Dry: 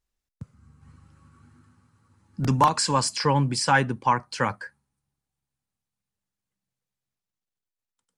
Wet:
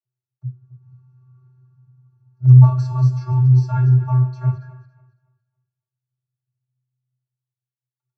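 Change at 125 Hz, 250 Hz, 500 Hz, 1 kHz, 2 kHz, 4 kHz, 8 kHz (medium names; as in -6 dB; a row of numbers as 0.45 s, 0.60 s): +16.5 dB, no reading, -10.5 dB, -11.0 dB, under -15 dB, under -20 dB, under -20 dB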